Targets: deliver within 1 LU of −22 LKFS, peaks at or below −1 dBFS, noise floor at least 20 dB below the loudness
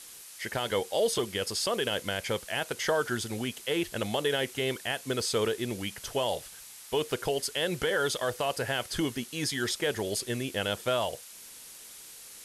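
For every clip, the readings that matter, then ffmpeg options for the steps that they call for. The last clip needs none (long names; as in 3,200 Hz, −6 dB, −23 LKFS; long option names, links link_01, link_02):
background noise floor −48 dBFS; target noise floor −51 dBFS; integrated loudness −30.5 LKFS; sample peak −17.0 dBFS; target loudness −22.0 LKFS
→ -af "afftdn=noise_reduction=6:noise_floor=-48"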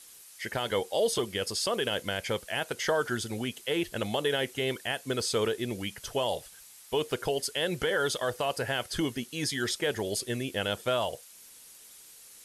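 background noise floor −52 dBFS; integrated loudness −30.5 LKFS; sample peak −17.5 dBFS; target loudness −22.0 LKFS
→ -af "volume=8.5dB"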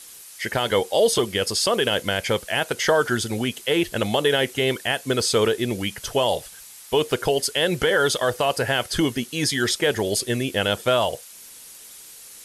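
integrated loudness −22.0 LKFS; sample peak −9.0 dBFS; background noise floor −44 dBFS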